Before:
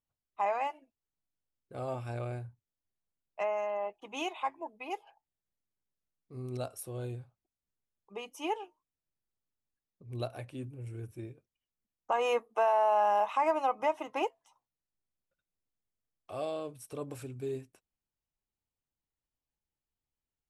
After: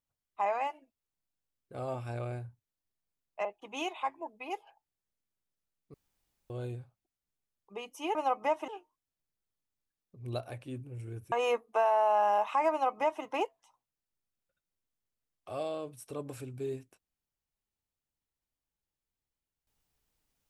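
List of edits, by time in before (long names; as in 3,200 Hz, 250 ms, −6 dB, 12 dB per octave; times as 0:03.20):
0:03.45–0:03.85: remove
0:06.34–0:06.90: fill with room tone
0:11.19–0:12.14: remove
0:13.53–0:14.06: duplicate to 0:08.55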